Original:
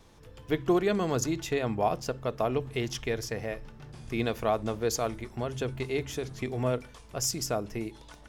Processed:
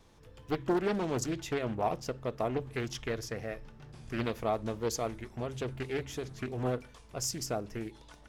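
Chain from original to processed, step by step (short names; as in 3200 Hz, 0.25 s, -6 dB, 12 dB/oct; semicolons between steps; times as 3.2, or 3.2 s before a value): Doppler distortion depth 0.51 ms; gain -4 dB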